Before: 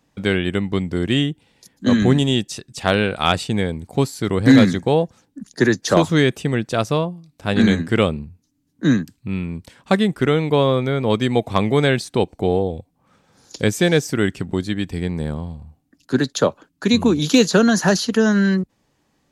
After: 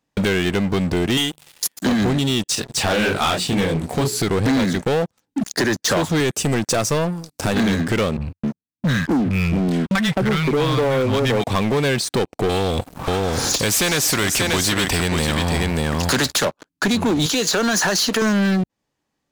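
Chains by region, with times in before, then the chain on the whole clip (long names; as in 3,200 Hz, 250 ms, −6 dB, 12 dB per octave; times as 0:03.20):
0:01.17–0:01.86: RIAA equalisation recording + mains-hum notches 50/100/150/200/250 Hz
0:02.55–0:04.22: mains-hum notches 60/120/180/240/300/360/420 Hz + micro pitch shift up and down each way 57 cents
0:06.20–0:07.55: high-pass filter 45 Hz 24 dB per octave + high shelf with overshoot 4,500 Hz +6.5 dB, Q 1.5
0:08.17–0:11.44: three-band delay without the direct sound lows, highs, mids 40/260 ms, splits 180/940 Hz + noise gate −41 dBFS, range −20 dB + bass and treble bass +2 dB, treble −7 dB
0:12.49–0:16.45: low-shelf EQ 130 Hz +7 dB + single-tap delay 586 ms −13 dB + every bin compressed towards the loudest bin 2 to 1
0:17.26–0:18.22: high-pass filter 460 Hz 6 dB per octave + downward compressor 5 to 1, threshold −26 dBFS
whole clip: low-shelf EQ 310 Hz −4 dB; downward compressor 5 to 1, threshold −30 dBFS; leveller curve on the samples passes 5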